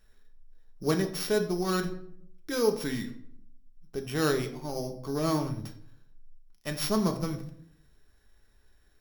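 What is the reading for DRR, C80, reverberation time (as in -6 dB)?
4.0 dB, 14.5 dB, 0.65 s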